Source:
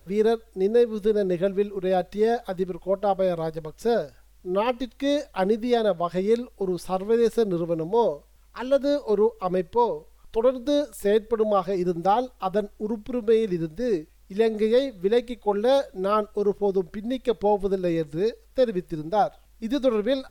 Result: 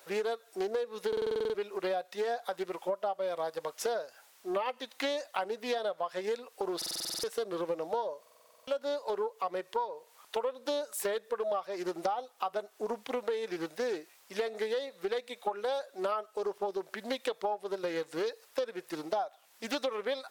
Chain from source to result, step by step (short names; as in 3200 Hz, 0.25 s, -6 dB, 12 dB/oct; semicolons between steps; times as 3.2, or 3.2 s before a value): Chebyshev high-pass 760 Hz, order 2; compressor 16:1, threshold -37 dBFS, peak gain reduction 20 dB; stuck buffer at 1.08/6.77/8.21, samples 2048, times 9; Doppler distortion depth 0.22 ms; gain +7.5 dB